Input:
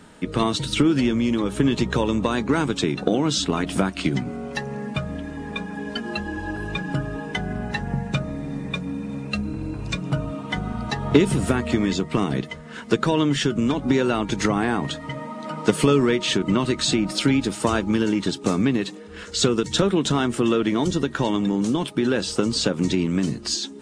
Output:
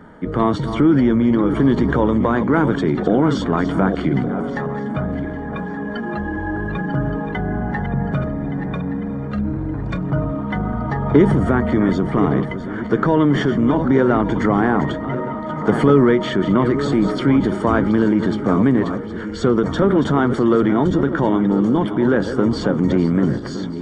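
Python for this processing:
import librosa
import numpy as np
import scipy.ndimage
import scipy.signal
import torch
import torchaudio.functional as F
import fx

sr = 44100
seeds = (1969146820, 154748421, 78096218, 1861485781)

y = fx.reverse_delay_fb(x, sr, ms=585, feedback_pct=52, wet_db=-11.0)
y = scipy.signal.savgol_filter(y, 41, 4, mode='constant')
y = fx.transient(y, sr, attack_db=-4, sustain_db=4)
y = y * 10.0 ** (5.5 / 20.0)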